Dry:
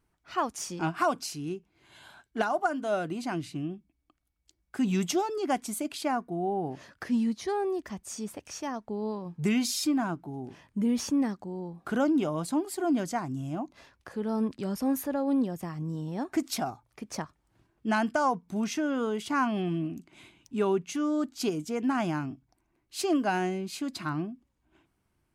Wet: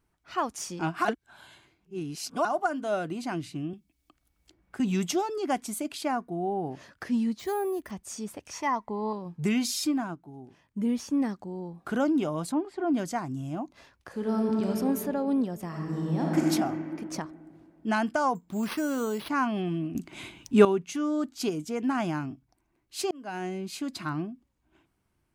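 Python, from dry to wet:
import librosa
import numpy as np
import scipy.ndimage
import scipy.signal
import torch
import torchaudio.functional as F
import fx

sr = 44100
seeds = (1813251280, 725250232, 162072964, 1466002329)

y = fx.band_squash(x, sr, depth_pct=70, at=(3.73, 4.8))
y = fx.resample_bad(y, sr, factor=4, down='filtered', up='hold', at=(7.39, 7.91))
y = fx.small_body(y, sr, hz=(1000.0, 2000.0), ring_ms=25, db=18, at=(8.53, 9.13))
y = fx.upward_expand(y, sr, threshold_db=-41.0, expansion=1.5, at=(9.88, 11.2))
y = fx.lowpass(y, sr, hz=2400.0, slope=12, at=(12.52, 12.94))
y = fx.reverb_throw(y, sr, start_s=14.1, length_s=0.57, rt60_s=2.7, drr_db=-1.5)
y = fx.reverb_throw(y, sr, start_s=15.67, length_s=0.77, rt60_s=2.4, drr_db=-4.0)
y = fx.resample_bad(y, sr, factor=6, down='none', up='hold', at=(18.35, 19.29))
y = fx.edit(y, sr, fx.reverse_span(start_s=1.05, length_s=1.4),
    fx.clip_gain(start_s=19.95, length_s=0.7, db=11.0),
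    fx.fade_in_span(start_s=23.11, length_s=0.55), tone=tone)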